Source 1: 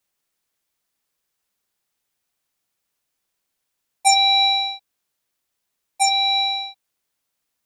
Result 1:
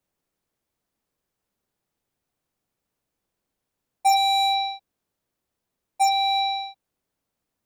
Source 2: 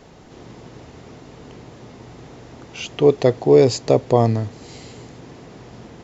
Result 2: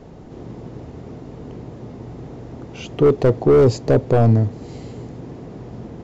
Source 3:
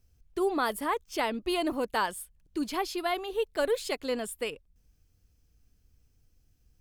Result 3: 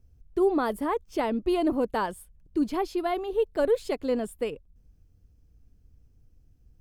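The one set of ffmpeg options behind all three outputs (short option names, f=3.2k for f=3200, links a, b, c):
-af "volume=14dB,asoftclip=hard,volume=-14dB,tiltshelf=f=970:g=7.5"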